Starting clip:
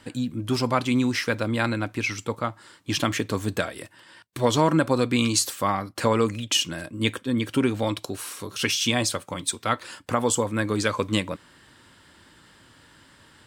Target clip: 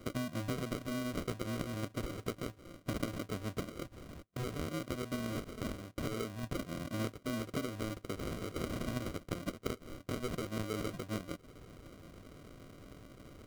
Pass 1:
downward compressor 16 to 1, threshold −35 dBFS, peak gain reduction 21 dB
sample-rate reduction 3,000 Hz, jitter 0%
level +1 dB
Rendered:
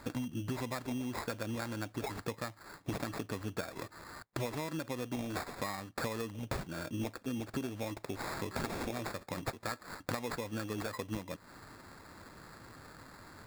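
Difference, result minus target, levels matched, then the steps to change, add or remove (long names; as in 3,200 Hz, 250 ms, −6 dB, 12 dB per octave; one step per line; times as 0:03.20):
sample-rate reduction: distortion −8 dB
change: sample-rate reduction 870 Hz, jitter 0%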